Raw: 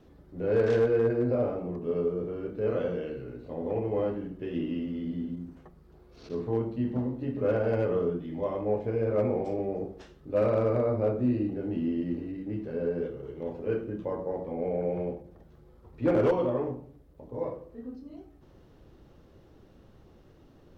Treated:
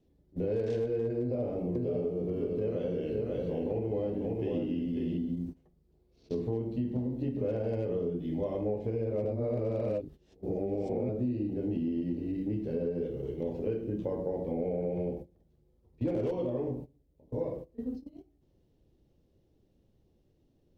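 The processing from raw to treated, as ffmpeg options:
ffmpeg -i in.wav -filter_complex "[0:a]asettb=1/sr,asplit=3[link_01][link_02][link_03];[link_01]atrim=end=1.214[link_04];[link_02]atrim=start=1.21:end=5.18,asetpts=PTS-STARTPTS,afade=type=in:duration=0.004:curve=qsin,afade=type=out:start_time=3.966:duration=0.004:curve=qsin,aecho=1:1:542:0.562,atrim=end_sample=175077[link_05];[link_03]atrim=start=5.176[link_06];[link_04][link_05]acrossfade=duration=0.004:curve1=hsin:curve2=qsin[link_07];[link_07][link_06]acrossfade=duration=0.004:curve1=qsin:curve2=hsin,asplit=3[link_08][link_09][link_10];[link_08]atrim=end=9.252[link_11];[link_09]atrim=start=9.248:end=11.092,asetpts=PTS-STARTPTS,areverse[link_12];[link_10]atrim=start=11.088[link_13];[link_11][link_12]acrossfade=duration=0.004:curve1=hsin:curve2=hsin[link_14];[link_14][link_13]acrossfade=duration=0.004:curve1=hsin:curve2=hsin,agate=range=-18dB:threshold=-42dB:ratio=16:detection=peak,equalizer=frequency=1300:width=1.1:gain=-15,acompressor=threshold=-35dB:ratio=6,volume=6dB" out.wav

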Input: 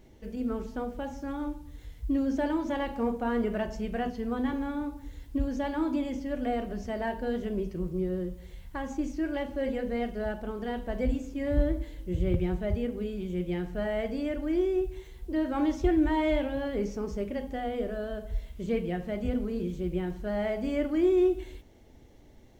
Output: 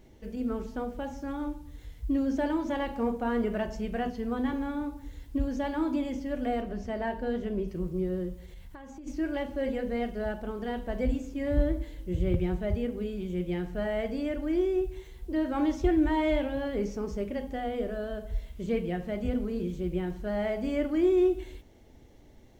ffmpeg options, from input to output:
ffmpeg -i in.wav -filter_complex "[0:a]asettb=1/sr,asplit=3[link_01][link_02][link_03];[link_01]atrim=end=6.614[link_04];[link_02]atrim=start=6.61:end=7.68,asetpts=PTS-STARTPTS,afade=type=in:duration=0.004:curve=qsin,afade=type=out:start_time=1.066:duration=0.004:curve=qsin,highshelf=frequency=5200:gain=-7[link_05];[link_03]atrim=start=7.676[link_06];[link_04][link_05]acrossfade=duration=0.004:curve1=hsin:curve2=qsin[link_07];[link_07][link_06]acrossfade=duration=0.004:curve1=qsin:curve2=hsin,asplit=3[link_08][link_09][link_10];[link_08]afade=type=out:start_time=8.45:duration=0.02[link_11];[link_09]acompressor=threshold=-41dB:ratio=12:attack=3.2:release=140:knee=1:detection=peak,afade=type=in:start_time=8.45:duration=0.02,afade=type=out:start_time=9.06:duration=0.02[link_12];[link_10]afade=type=in:start_time=9.06:duration=0.02[link_13];[link_11][link_12][link_13]amix=inputs=3:normalize=0" out.wav

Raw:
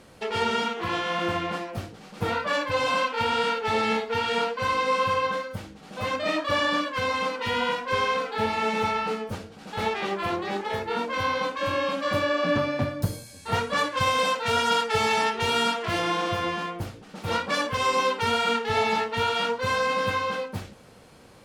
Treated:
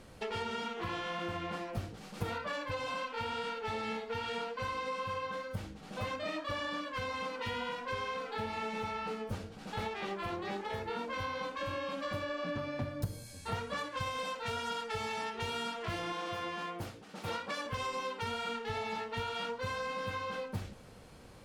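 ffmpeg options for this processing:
ffmpeg -i in.wav -filter_complex "[0:a]asettb=1/sr,asplit=3[link_01][link_02][link_03];[link_01]atrim=end=1.974[link_04];[link_02]atrim=start=1.97:end=2.38,asetpts=PTS-STARTPTS,afade=type=in:duration=0.004:curve=qsin,afade=type=out:start_time=0.406:duration=0.004:curve=qsin,highshelf=frequency=5900:gain=6[link_05];[link_03]atrim=start=2.376[link_06];[link_04][link_05]acrossfade=duration=0.004:curve1=hsin:curve2=qsin[link_07];[link_07][link_06]acrossfade=duration=0.004:curve1=qsin:curve2=hsin,asettb=1/sr,asplit=3[link_08][link_09][link_10];[link_08]atrim=end=16.124[link_11];[link_09]atrim=start=16.12:end=17.66,asetpts=PTS-STARTPTS,afade=type=in:duration=0.004:curve=qsin,afade=type=out:start_time=1.536:duration=0.004:curve=qsin,highpass=frequency=280:poles=1[link_12];[link_10]atrim=start=17.656[link_13];[link_11][link_12]acrossfade=duration=0.004:curve1=hsin:curve2=qsin[link_14];[link_14][link_13]acrossfade=duration=0.004:curve1=qsin:curve2=hsin,acompressor=threshold=-31dB:ratio=5,lowshelf=frequency=80:gain=11.5,volume=-4.5dB" out.wav

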